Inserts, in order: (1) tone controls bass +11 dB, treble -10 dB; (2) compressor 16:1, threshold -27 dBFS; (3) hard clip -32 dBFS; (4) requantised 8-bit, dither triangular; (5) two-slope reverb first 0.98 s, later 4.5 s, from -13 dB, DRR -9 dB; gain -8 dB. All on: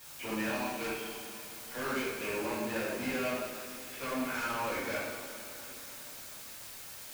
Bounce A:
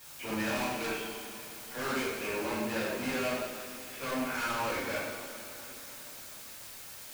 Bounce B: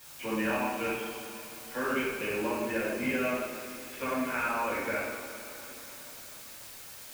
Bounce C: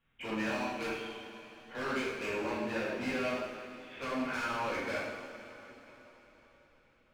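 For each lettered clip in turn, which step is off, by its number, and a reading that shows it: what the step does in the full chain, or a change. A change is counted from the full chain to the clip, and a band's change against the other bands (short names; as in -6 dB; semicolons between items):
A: 2, mean gain reduction 4.5 dB; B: 3, distortion -8 dB; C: 4, distortion -9 dB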